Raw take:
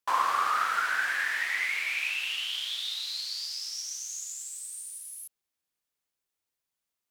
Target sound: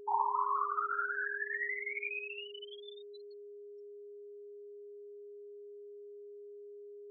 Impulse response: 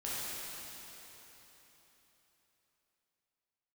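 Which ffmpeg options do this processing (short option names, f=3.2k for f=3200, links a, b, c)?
-af "afftfilt=real='re*gte(hypot(re,im),0.141)':imag='im*gte(hypot(re,im),0.141)':win_size=1024:overlap=0.75,asubboost=boost=11.5:cutoff=220,aeval=exprs='val(0)+0.00708*sin(2*PI*550*n/s)':c=same,highpass=f=300:t=q:w=0.5412,highpass=f=300:t=q:w=1.307,lowpass=f=3.4k:t=q:w=0.5176,lowpass=f=3.4k:t=q:w=0.7071,lowpass=f=3.4k:t=q:w=1.932,afreqshift=-140,volume=-4dB"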